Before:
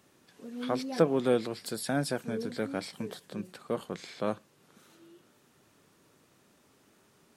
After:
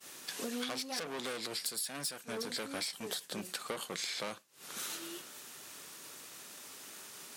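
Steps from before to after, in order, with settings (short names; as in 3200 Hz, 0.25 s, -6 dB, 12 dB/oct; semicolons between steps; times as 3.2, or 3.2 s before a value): high shelf 9300 Hz -5.5 dB; tube stage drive 33 dB, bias 0.3; tilt +4 dB/oct; compressor 12:1, threshold -52 dBFS, peak gain reduction 24.5 dB; expander -56 dBFS; gain +17 dB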